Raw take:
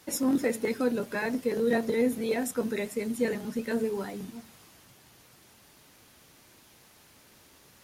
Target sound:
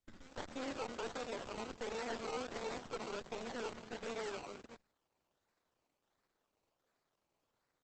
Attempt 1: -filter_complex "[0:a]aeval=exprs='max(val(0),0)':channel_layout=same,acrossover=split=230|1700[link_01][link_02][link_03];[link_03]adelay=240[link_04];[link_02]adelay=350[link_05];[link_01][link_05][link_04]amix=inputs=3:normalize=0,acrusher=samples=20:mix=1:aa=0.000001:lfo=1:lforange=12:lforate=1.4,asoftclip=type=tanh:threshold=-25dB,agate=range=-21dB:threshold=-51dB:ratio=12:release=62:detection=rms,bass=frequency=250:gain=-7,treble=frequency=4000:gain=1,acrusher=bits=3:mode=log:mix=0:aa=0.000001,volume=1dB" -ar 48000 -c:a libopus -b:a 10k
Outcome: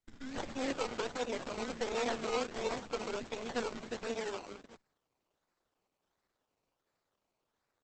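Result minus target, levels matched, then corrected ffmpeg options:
soft clipping: distortion −12 dB
-filter_complex "[0:a]aeval=exprs='max(val(0),0)':channel_layout=same,acrossover=split=230|1700[link_01][link_02][link_03];[link_03]adelay=240[link_04];[link_02]adelay=350[link_05];[link_01][link_05][link_04]amix=inputs=3:normalize=0,acrusher=samples=20:mix=1:aa=0.000001:lfo=1:lforange=12:lforate=1.4,asoftclip=type=tanh:threshold=-36.5dB,agate=range=-21dB:threshold=-51dB:ratio=12:release=62:detection=rms,bass=frequency=250:gain=-7,treble=frequency=4000:gain=1,acrusher=bits=3:mode=log:mix=0:aa=0.000001,volume=1dB" -ar 48000 -c:a libopus -b:a 10k

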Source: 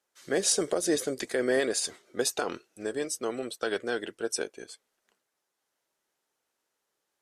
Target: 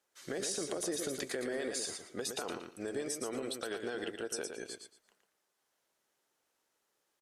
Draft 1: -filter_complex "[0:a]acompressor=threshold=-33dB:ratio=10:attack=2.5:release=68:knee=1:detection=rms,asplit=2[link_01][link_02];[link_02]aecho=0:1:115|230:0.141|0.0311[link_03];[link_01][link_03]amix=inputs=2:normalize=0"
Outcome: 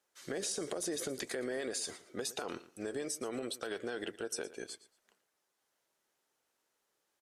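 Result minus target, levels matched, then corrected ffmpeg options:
echo-to-direct −11 dB
-filter_complex "[0:a]acompressor=threshold=-33dB:ratio=10:attack=2.5:release=68:knee=1:detection=rms,asplit=2[link_01][link_02];[link_02]aecho=0:1:115|230|345:0.501|0.11|0.0243[link_03];[link_01][link_03]amix=inputs=2:normalize=0"

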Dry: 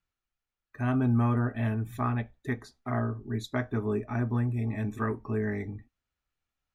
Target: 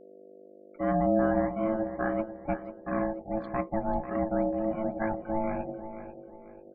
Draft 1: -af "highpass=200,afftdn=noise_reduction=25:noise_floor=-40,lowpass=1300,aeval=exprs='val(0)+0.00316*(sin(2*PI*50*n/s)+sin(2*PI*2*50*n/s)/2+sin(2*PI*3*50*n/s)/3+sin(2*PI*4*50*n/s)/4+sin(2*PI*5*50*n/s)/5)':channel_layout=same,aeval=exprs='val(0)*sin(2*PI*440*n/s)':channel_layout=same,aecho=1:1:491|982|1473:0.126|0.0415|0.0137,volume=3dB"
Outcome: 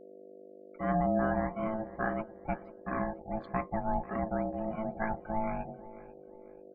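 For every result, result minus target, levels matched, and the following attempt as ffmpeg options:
echo-to-direct −6.5 dB; 125 Hz band +2.5 dB
-af "highpass=200,afftdn=noise_reduction=25:noise_floor=-40,lowpass=1300,aeval=exprs='val(0)+0.00316*(sin(2*PI*50*n/s)+sin(2*PI*2*50*n/s)/2+sin(2*PI*3*50*n/s)/3+sin(2*PI*4*50*n/s)/4+sin(2*PI*5*50*n/s)/5)':channel_layout=same,aeval=exprs='val(0)*sin(2*PI*440*n/s)':channel_layout=same,aecho=1:1:491|982|1473:0.266|0.0878|0.029,volume=3dB"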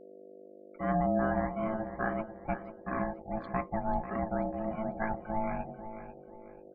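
125 Hz band +2.5 dB
-af "highpass=54,afftdn=noise_reduction=25:noise_floor=-40,lowpass=1300,aeval=exprs='val(0)+0.00316*(sin(2*PI*50*n/s)+sin(2*PI*2*50*n/s)/2+sin(2*PI*3*50*n/s)/3+sin(2*PI*4*50*n/s)/4+sin(2*PI*5*50*n/s)/5)':channel_layout=same,aeval=exprs='val(0)*sin(2*PI*440*n/s)':channel_layout=same,aecho=1:1:491|982|1473:0.266|0.0878|0.029,volume=3dB"

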